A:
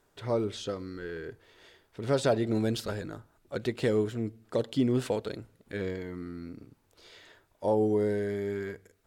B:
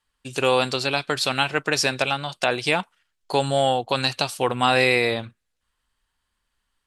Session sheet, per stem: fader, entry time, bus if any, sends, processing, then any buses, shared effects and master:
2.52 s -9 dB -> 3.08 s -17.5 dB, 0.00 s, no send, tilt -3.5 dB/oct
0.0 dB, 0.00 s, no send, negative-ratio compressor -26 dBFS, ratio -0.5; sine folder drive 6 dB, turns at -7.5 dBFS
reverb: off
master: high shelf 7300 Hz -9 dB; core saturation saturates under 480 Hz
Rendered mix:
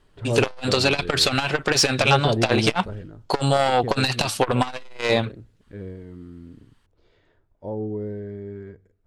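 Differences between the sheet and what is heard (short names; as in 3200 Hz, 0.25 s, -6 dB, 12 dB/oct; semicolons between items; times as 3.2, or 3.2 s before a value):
stem A -9.0 dB -> 0.0 dB; stem B: missing negative-ratio compressor -26 dBFS, ratio -0.5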